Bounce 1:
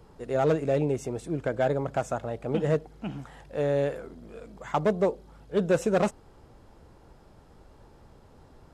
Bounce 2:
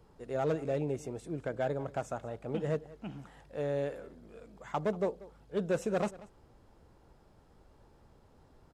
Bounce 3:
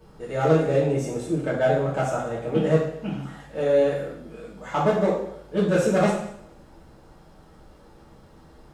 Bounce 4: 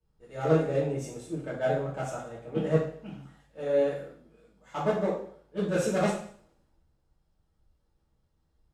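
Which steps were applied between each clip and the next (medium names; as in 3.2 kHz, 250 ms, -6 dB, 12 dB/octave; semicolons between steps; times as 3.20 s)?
delay 187 ms -19.5 dB; trim -7.5 dB
two-slope reverb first 0.6 s, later 1.5 s, from -24 dB, DRR -7.5 dB; trim +4 dB
three bands expanded up and down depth 70%; trim -7.5 dB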